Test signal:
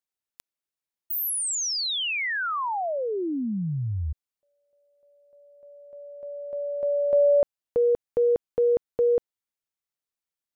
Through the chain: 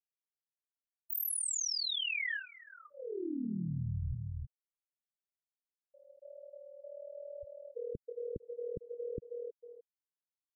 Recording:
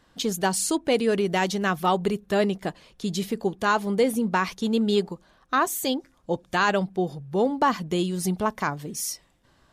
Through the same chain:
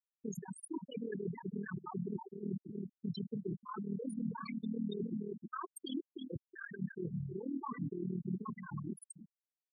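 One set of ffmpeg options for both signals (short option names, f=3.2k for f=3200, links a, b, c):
-filter_complex "[0:a]acrossover=split=110|5100[a][b][c];[b]alimiter=limit=-18.5dB:level=0:latency=1:release=46[d];[a][d][c]amix=inputs=3:normalize=0,tremolo=f=39:d=0.974,lowshelf=f=380:g=-6.5,asplit=2[e][f];[f]adelay=320,lowpass=f=4.1k:p=1,volume=-12.5dB,asplit=2[g][h];[h]adelay=320,lowpass=f=4.1k:p=1,volume=0.24,asplit=2[i][j];[j]adelay=320,lowpass=f=4.1k:p=1,volume=0.24[k];[e][g][i][k]amix=inputs=4:normalize=0,areverse,acompressor=threshold=-44dB:ratio=8:attack=3.2:release=103:knee=6:detection=peak,areverse,acrusher=bits=7:mode=log:mix=0:aa=0.000001,equalizer=f=620:t=o:w=0.7:g=-12,aeval=exprs='0.0224*(cos(1*acos(clip(val(0)/0.0224,-1,1)))-cos(1*PI/2))+0.00126*(cos(5*acos(clip(val(0)/0.0224,-1,1)))-cos(5*PI/2))':c=same,afftfilt=real='re*gte(hypot(re,im),0.0178)':imag='im*gte(hypot(re,im),0.0178)':win_size=1024:overlap=0.75,afftfilt=real='re*(1-between(b*sr/1024,830*pow(7200/830,0.5+0.5*sin(2*PI*0.26*pts/sr))/1.41,830*pow(7200/830,0.5+0.5*sin(2*PI*0.26*pts/sr))*1.41))':imag='im*(1-between(b*sr/1024,830*pow(7200/830,0.5+0.5*sin(2*PI*0.26*pts/sr))/1.41,830*pow(7200/830,0.5+0.5*sin(2*PI*0.26*pts/sr))*1.41))':win_size=1024:overlap=0.75,volume=10.5dB"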